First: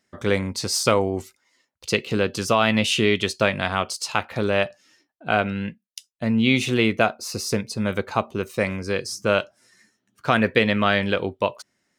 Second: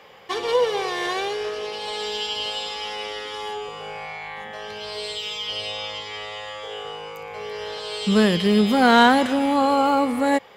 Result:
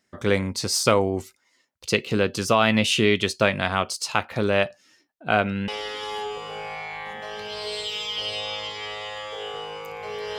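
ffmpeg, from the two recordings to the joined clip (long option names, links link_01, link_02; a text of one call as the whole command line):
ffmpeg -i cue0.wav -i cue1.wav -filter_complex "[0:a]apad=whole_dur=10.38,atrim=end=10.38,atrim=end=5.682[link_01];[1:a]atrim=start=2.988:end=7.69[link_02];[link_01][link_02]acrossfade=duration=0.004:curve1=hsin:curve2=hsin" out.wav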